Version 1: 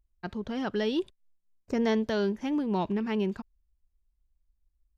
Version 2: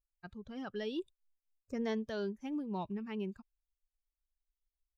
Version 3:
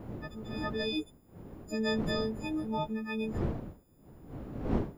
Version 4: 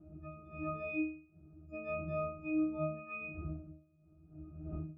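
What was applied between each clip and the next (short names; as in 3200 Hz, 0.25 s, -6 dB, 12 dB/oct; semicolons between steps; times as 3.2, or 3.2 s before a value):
per-bin expansion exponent 1.5; gain -8 dB
frequency quantiser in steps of 6 st; wind noise 290 Hz -43 dBFS; gain +4 dB
octave resonator D#, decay 0.44 s; gain +4 dB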